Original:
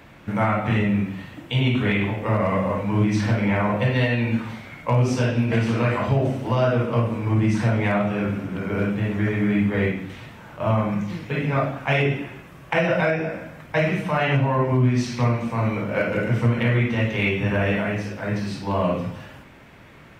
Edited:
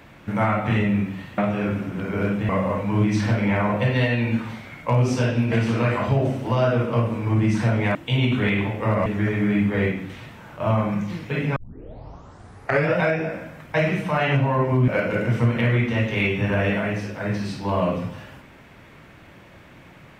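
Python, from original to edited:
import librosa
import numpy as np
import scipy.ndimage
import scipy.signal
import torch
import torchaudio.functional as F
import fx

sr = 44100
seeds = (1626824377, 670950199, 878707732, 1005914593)

y = fx.edit(x, sr, fx.swap(start_s=1.38, length_s=1.11, other_s=7.95, other_length_s=1.11),
    fx.tape_start(start_s=11.56, length_s=1.43),
    fx.cut(start_s=14.88, length_s=1.02), tone=tone)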